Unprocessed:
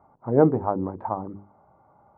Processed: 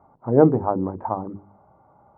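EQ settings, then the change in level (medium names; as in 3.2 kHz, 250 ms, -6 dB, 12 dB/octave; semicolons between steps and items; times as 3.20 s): distance through air 440 m; hum notches 50/100/150/200 Hz; +4.0 dB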